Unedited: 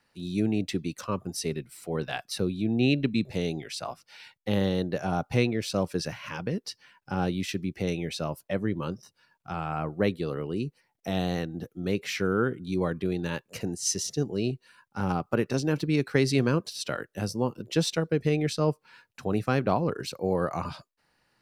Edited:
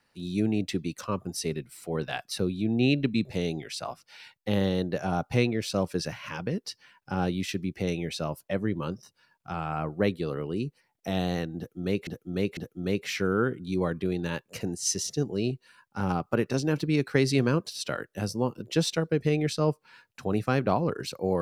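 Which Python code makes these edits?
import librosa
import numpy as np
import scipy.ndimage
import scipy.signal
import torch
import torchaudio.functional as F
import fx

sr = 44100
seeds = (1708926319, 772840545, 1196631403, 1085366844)

y = fx.edit(x, sr, fx.repeat(start_s=11.57, length_s=0.5, count=3), tone=tone)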